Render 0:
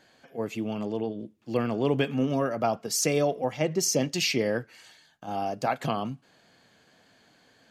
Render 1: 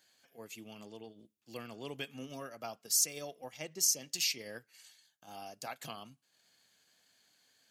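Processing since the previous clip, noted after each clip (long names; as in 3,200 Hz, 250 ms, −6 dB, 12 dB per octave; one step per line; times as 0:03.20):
first-order pre-emphasis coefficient 0.9
transient designer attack 0 dB, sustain −5 dB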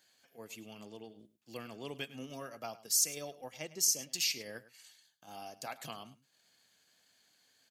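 single-tap delay 104 ms −17 dB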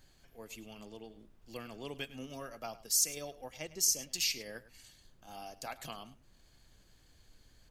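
background noise brown −62 dBFS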